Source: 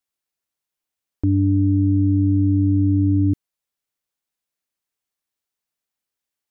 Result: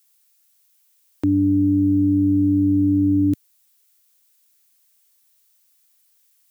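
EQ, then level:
high-pass filter 110 Hz
spectral tilt +4.5 dB per octave
low-shelf EQ 230 Hz +6.5 dB
+8.0 dB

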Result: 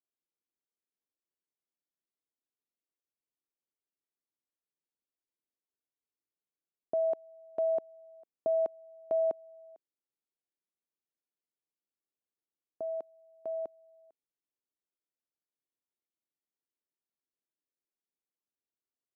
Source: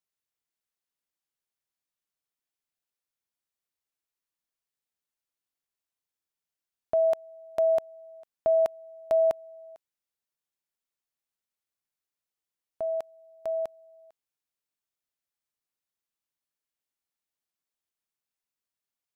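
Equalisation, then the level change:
resonant band-pass 330 Hz, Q 1.5
+1.5 dB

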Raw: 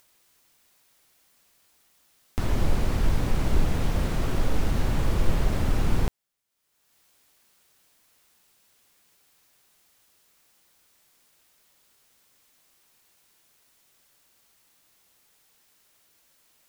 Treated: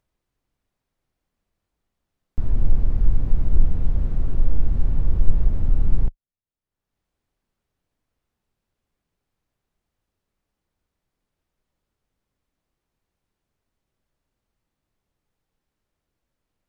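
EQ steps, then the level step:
spectral tilt −4 dB per octave
−13.5 dB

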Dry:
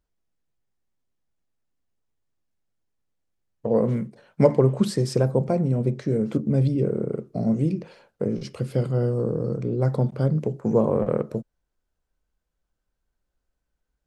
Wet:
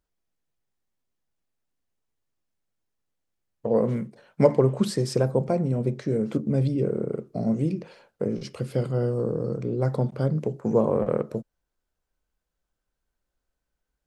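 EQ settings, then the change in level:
low-shelf EQ 240 Hz −4 dB
0.0 dB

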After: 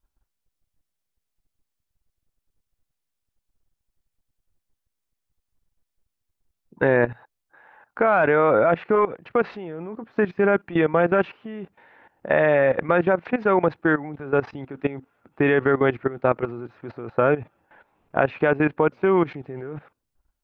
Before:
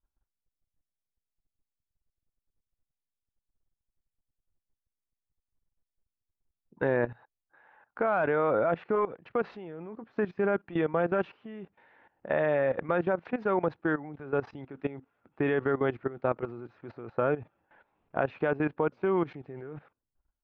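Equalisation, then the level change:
dynamic equaliser 2,200 Hz, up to +4 dB, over −47 dBFS, Q 1.6
+8.0 dB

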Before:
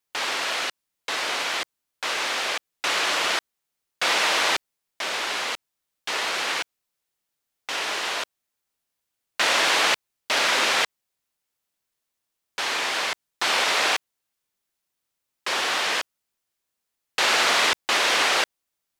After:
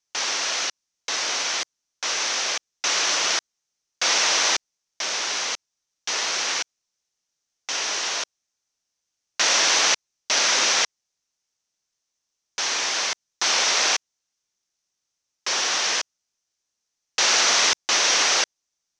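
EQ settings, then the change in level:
low-pass with resonance 6,000 Hz, resonance Q 5.4
−2.5 dB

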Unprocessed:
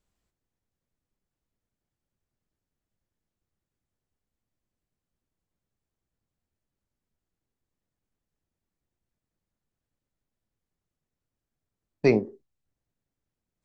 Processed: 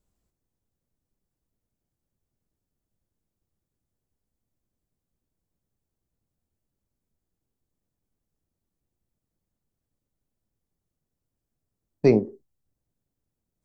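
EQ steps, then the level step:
parametric band 2,300 Hz −9 dB 2.7 octaves
+4.0 dB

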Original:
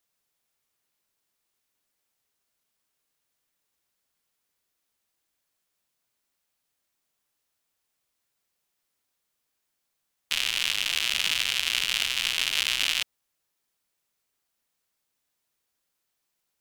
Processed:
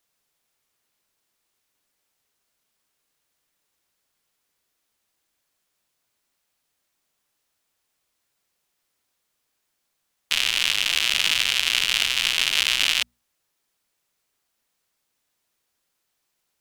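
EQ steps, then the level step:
high-shelf EQ 11,000 Hz −3.5 dB
mains-hum notches 60/120/180/240 Hz
+5.0 dB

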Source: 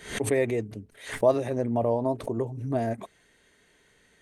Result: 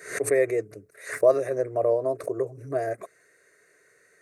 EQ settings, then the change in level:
high-pass filter 200 Hz 12 dB per octave
phaser with its sweep stopped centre 870 Hz, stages 6
+4.5 dB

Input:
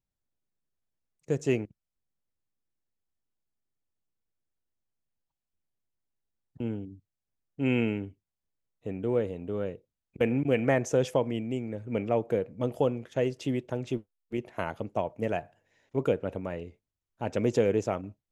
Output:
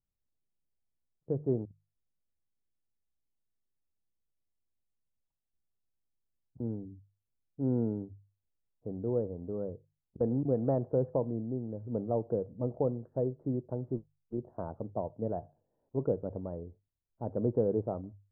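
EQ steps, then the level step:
Gaussian smoothing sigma 11 samples
parametric band 280 Hz −4.5 dB 2.4 octaves
mains-hum notches 50/100/150 Hz
+1.5 dB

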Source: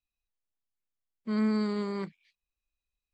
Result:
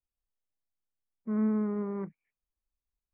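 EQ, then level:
Bessel low-pass filter 1,300 Hz, order 8
high-frequency loss of the air 440 metres
0.0 dB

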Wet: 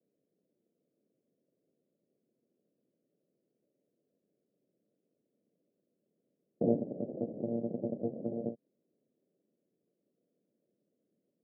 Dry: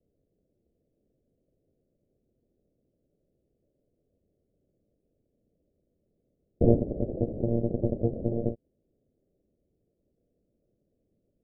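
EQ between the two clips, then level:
high-pass filter 170 Hz 24 dB per octave
dynamic equaliser 370 Hz, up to −5 dB, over −38 dBFS, Q 2.6
high-frequency loss of the air 390 metres
−3.5 dB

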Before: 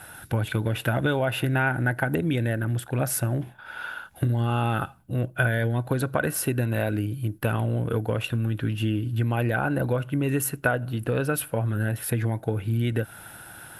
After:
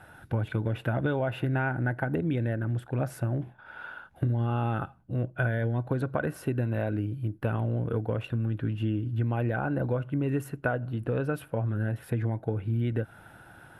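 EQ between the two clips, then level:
low-pass filter 1,200 Hz 6 dB per octave
−3.0 dB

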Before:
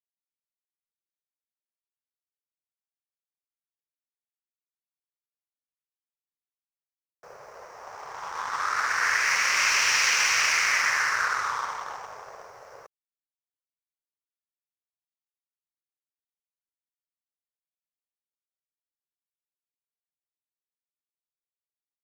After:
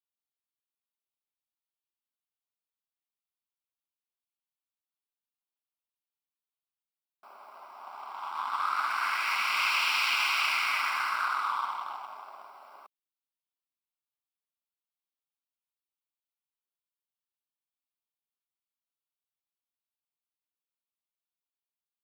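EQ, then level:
linear-phase brick-wall high-pass 200 Hz
phaser with its sweep stopped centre 1,800 Hz, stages 6
0.0 dB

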